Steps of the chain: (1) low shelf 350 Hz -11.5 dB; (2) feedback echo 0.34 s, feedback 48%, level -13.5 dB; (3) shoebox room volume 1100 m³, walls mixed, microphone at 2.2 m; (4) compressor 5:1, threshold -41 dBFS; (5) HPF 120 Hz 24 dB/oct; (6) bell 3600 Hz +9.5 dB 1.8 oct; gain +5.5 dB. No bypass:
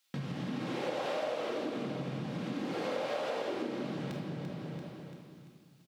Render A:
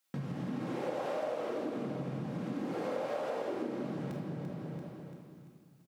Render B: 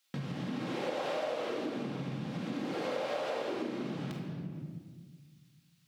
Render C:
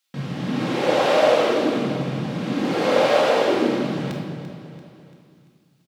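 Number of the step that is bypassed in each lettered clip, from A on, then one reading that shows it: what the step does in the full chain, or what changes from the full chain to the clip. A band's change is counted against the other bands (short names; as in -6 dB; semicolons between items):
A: 6, 4 kHz band -8.0 dB; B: 2, momentary loudness spread change -1 LU; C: 4, mean gain reduction 11.5 dB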